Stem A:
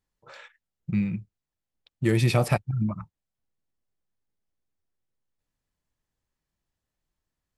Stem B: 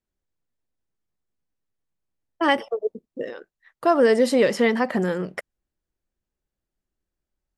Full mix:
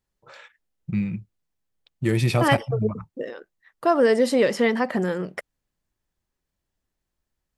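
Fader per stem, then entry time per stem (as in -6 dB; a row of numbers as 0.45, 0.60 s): +0.5, -1.0 dB; 0.00, 0.00 s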